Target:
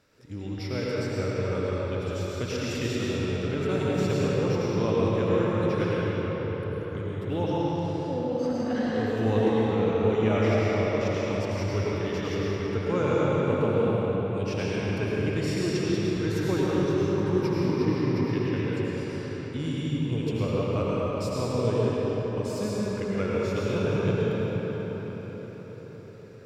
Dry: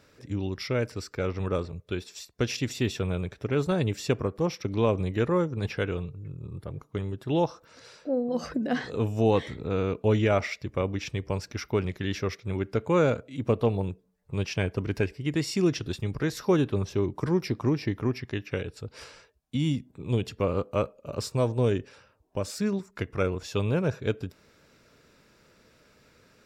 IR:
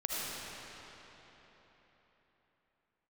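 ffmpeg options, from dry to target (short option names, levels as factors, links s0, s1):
-filter_complex "[1:a]atrim=start_sample=2205,asetrate=31311,aresample=44100[s0];[0:a][s0]afir=irnorm=-1:irlink=0,volume=0.447"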